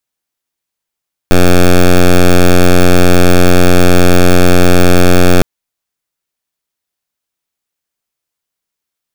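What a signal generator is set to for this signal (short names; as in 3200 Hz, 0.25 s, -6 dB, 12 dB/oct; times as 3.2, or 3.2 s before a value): pulse 89.4 Hz, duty 9% -4 dBFS 4.11 s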